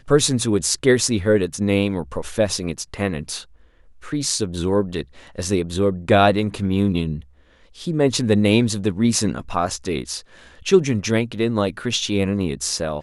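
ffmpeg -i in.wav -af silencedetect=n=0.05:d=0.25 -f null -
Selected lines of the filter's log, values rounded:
silence_start: 3.40
silence_end: 4.08 | silence_duration: 0.68
silence_start: 5.02
silence_end: 5.38 | silence_duration: 0.36
silence_start: 7.19
silence_end: 7.82 | silence_duration: 0.63
silence_start: 10.18
silence_end: 10.66 | silence_duration: 0.48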